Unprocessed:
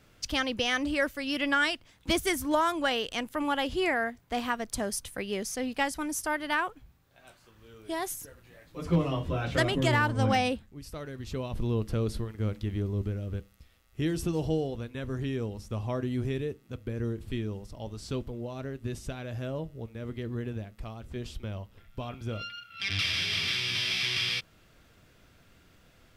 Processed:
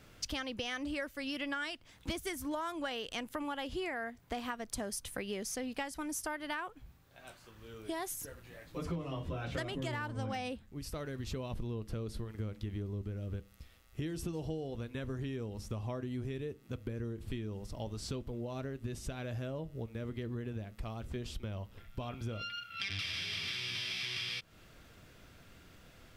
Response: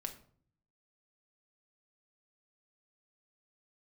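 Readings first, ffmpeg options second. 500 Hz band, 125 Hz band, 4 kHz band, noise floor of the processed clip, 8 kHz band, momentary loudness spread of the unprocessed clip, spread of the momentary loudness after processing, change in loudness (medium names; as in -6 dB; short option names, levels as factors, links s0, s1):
-8.5 dB, -7.5 dB, -8.5 dB, -60 dBFS, -5.5 dB, 14 LU, 12 LU, -9.0 dB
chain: -af "acompressor=threshold=0.0126:ratio=6,volume=1.26"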